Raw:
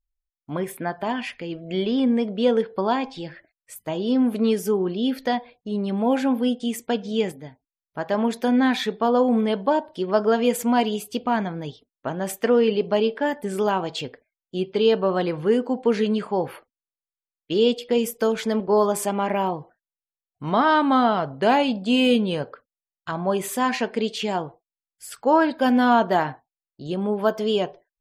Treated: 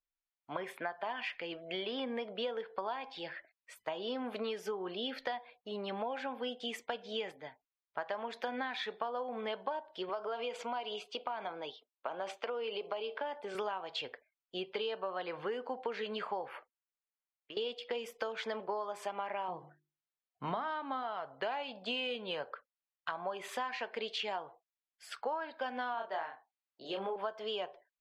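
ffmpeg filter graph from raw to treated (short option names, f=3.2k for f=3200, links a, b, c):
-filter_complex "[0:a]asettb=1/sr,asplit=3[a][b][c];[a]atrim=end=10.094[d];[b]atrim=start=10.09:end=13.55,asetpts=PTS-STARTPTS,afade=t=in:d=0.004:c=qsin,afade=t=out:st=3.456:d=0.004:c=qsin,highpass=260,lowpass=5.9k,acompressor=threshold=-25dB:ratio=3:attack=3.2:release=140:knee=1:detection=peak,equalizer=f=1.8k:t=o:w=0.25:g=-11.5[e];[c]atrim=start=13.546[f];[d][e]acrossfade=d=0.004:c1=hsin:c2=qsin[g];[g][f]acrossfade=d=0.004:c1=qsin:c2=hsin,asettb=1/sr,asplit=3[h][i][j];[h]atrim=end=16.484[k];[i]atrim=start=16.48:end=17.57,asetpts=PTS-STARTPTS,afade=t=in:d=0.004:c=qsin,afade=t=out:st=1.086:d=0.004:c=qsin,equalizer=f=4.1k:w=2.1:g=-8.5,acompressor=threshold=-36dB:ratio=8:attack=3.2:release=140:knee=1:detection=peak[l];[j]atrim=start=17.566[m];[k][l]acrossfade=d=0.004:c1=hsin:c2=qsin[n];[n][m]acrossfade=d=0.004:c1=qsin:c2=hsin,asettb=1/sr,asplit=3[o][p][q];[o]atrim=end=19.484[r];[p]atrim=start=19.48:end=21.03,asetpts=PTS-STARTPTS,afade=t=in:d=0.004:c=qsin,afade=t=out:st=1.546:d=0.004:c=qsin,lowpass=8.8k,equalizer=f=170:w=0.77:g=12,bandreject=f=50:t=h:w=6,bandreject=f=100:t=h:w=6,bandreject=f=150:t=h:w=6,bandreject=f=200:t=h:w=6,bandreject=f=250:t=h:w=6,bandreject=f=300:t=h:w=6,bandreject=f=350:t=h:w=6,bandreject=f=400:t=h:w=6[s];[q]atrim=start=21.026[t];[r][s]acrossfade=d=0.004:c1=hsin:c2=qsin[u];[u][t]acrossfade=d=0.004:c1=qsin:c2=hsin,asettb=1/sr,asplit=3[v][w][x];[v]atrim=end=25.944[y];[w]atrim=start=25.94:end=27.16,asetpts=PTS-STARTPTS,afade=t=in:d=0.004:c=qsin,afade=t=out:st=1.216:d=0.004:c=qsin,highpass=210,asplit=2[z][aa];[aa]adelay=31,volume=-3dB[ab];[z][ab]amix=inputs=2:normalize=0,atrim=end_sample=53802[ac];[x]atrim=start=27.156[ad];[y][ac]acrossfade=d=0.004:c1=hsin:c2=qsin[ae];[ae][ad]acrossfade=d=0.004:c1=qsin:c2=hsin,acrossover=split=530 4500:gain=0.0891 1 0.0794[af][ag][ah];[af][ag][ah]amix=inputs=3:normalize=0,acompressor=threshold=-34dB:ratio=12"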